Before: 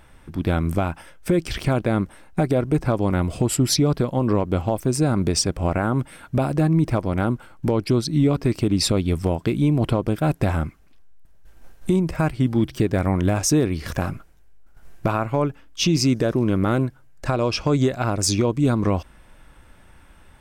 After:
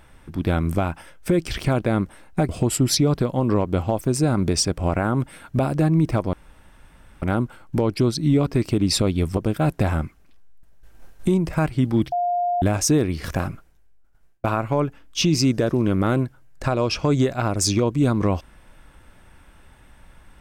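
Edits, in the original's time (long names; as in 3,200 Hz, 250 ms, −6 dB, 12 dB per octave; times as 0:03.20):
0:02.49–0:03.28: remove
0:07.12: splice in room tone 0.89 s
0:09.27–0:09.99: remove
0:12.74–0:13.24: beep over 706 Hz −19 dBFS
0:14.03–0:15.06: fade out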